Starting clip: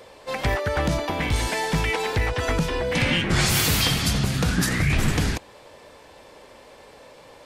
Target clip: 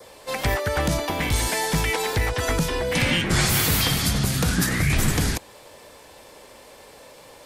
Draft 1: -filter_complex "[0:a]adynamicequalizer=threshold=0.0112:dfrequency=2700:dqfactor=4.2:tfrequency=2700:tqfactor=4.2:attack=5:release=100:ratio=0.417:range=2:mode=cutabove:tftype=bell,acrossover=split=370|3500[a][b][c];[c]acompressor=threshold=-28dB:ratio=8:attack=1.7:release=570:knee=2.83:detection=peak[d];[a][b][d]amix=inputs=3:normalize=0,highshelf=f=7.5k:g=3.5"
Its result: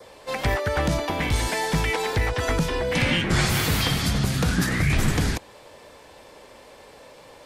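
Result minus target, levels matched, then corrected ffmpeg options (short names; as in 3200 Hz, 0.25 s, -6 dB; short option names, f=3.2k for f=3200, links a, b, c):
8000 Hz band -4.5 dB
-filter_complex "[0:a]adynamicequalizer=threshold=0.0112:dfrequency=2700:dqfactor=4.2:tfrequency=2700:tqfactor=4.2:attack=5:release=100:ratio=0.417:range=2:mode=cutabove:tftype=bell,acrossover=split=370|3500[a][b][c];[c]acompressor=threshold=-28dB:ratio=8:attack=1.7:release=570:knee=2.83:detection=peak[d];[a][b][d]amix=inputs=3:normalize=0,highshelf=f=7.5k:g=14.5"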